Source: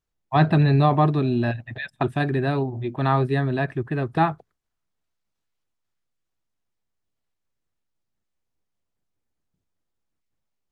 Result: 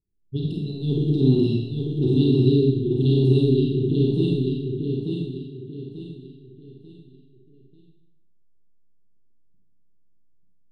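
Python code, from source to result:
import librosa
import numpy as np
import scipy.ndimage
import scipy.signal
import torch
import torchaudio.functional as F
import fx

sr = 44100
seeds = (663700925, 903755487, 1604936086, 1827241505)

y = fx.brickwall_bandstop(x, sr, low_hz=450.0, high_hz=2700.0)
y = fx.env_lowpass(y, sr, base_hz=620.0, full_db=-17.0)
y = fx.over_compress(y, sr, threshold_db=-22.0, ratio=-0.5)
y = fx.echo_feedback(y, sr, ms=890, feedback_pct=34, wet_db=-4.5)
y = fx.rev_schroeder(y, sr, rt60_s=0.81, comb_ms=31, drr_db=-2.0)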